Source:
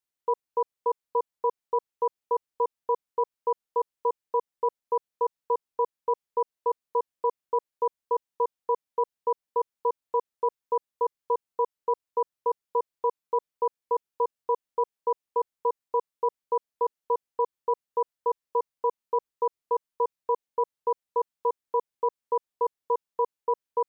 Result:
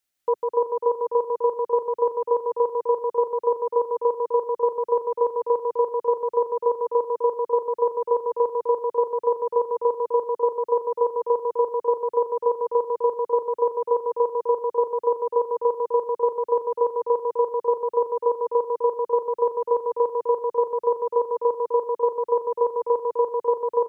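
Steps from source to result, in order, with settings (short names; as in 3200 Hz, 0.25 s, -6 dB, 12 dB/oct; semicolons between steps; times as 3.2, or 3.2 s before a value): thirty-one-band EQ 125 Hz -12 dB, 200 Hz -5 dB, 400 Hz -7 dB, 1000 Hz -9 dB; on a send: bouncing-ball echo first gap 0.15 s, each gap 0.7×, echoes 5; on the sum: gain +8.5 dB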